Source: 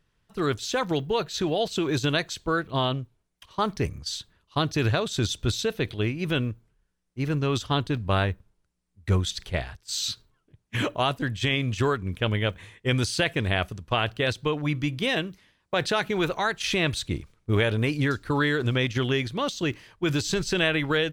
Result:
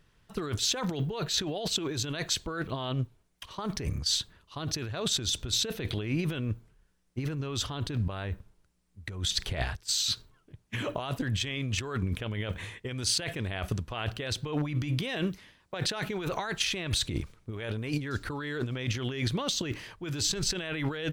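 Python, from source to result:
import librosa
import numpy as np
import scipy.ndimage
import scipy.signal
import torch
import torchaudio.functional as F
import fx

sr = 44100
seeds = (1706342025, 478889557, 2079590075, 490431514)

y = fx.over_compress(x, sr, threshold_db=-32.0, ratio=-1.0)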